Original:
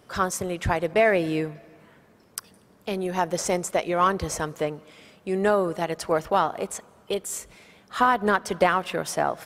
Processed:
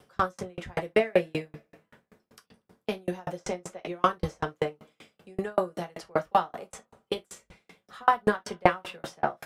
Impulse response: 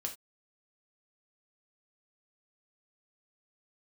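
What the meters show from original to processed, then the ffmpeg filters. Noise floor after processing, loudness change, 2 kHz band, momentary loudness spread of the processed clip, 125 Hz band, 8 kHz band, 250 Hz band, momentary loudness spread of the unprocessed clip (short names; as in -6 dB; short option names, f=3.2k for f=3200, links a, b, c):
-80 dBFS, -5.0 dB, -6.0 dB, 14 LU, -5.0 dB, -15.0 dB, -6.0 dB, 16 LU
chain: -filter_complex "[0:a]acrossover=split=190|570|5000[a][b][c][d];[d]acompressor=threshold=-50dB:ratio=6[e];[a][b][c][e]amix=inputs=4:normalize=0[f];[1:a]atrim=start_sample=2205,asetrate=52920,aresample=44100[g];[f][g]afir=irnorm=-1:irlink=0,aeval=exprs='val(0)*pow(10,-39*if(lt(mod(5.2*n/s,1),2*abs(5.2)/1000),1-mod(5.2*n/s,1)/(2*abs(5.2)/1000),(mod(5.2*n/s,1)-2*abs(5.2)/1000)/(1-2*abs(5.2)/1000))/20)':c=same,volume=5.5dB"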